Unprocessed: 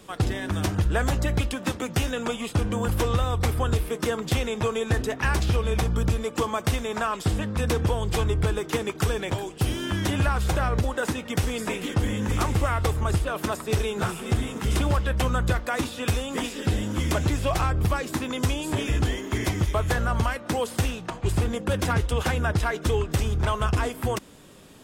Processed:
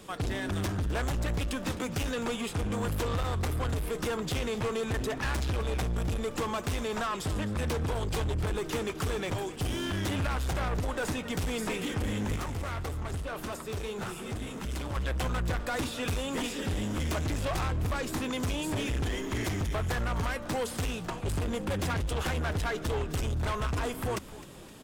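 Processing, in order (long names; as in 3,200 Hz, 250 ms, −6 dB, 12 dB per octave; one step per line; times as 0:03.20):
soft clipping −27.5 dBFS, distortion −8 dB
0:12.36–0:14.96: flanger 1.7 Hz, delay 2.2 ms, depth 9.4 ms, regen −67%
echo with shifted repeats 259 ms, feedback 51%, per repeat −69 Hz, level −16.5 dB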